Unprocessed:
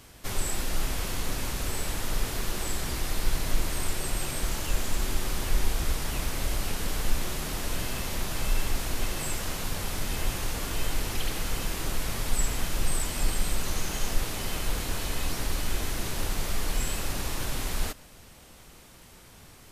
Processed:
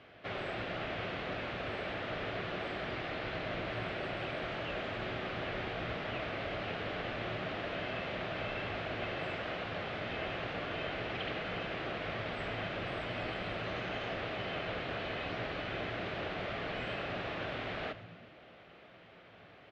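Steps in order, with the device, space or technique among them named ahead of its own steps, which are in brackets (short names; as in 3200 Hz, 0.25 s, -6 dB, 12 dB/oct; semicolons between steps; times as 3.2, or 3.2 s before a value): tone controls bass -13 dB, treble -9 dB; frequency-shifting delay pedal into a guitar cabinet (frequency-shifting echo 0.1 s, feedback 65%, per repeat -65 Hz, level -16 dB; speaker cabinet 77–3400 Hz, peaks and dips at 110 Hz +7 dB, 170 Hz +5 dB, 640 Hz +6 dB, 950 Hz -8 dB)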